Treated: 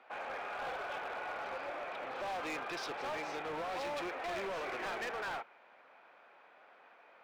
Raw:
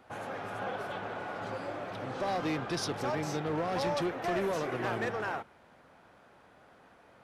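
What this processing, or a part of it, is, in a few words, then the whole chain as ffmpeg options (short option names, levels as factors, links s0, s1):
megaphone: -af "highpass=560,lowpass=3300,equalizer=f=2400:t=o:w=0.27:g=7,asoftclip=type=hard:threshold=0.0158"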